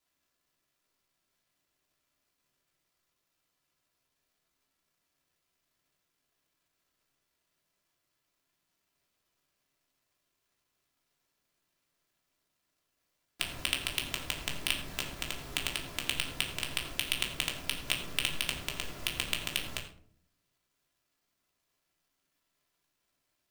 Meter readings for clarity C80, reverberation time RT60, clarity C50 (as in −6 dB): 10.5 dB, 0.60 s, 8.0 dB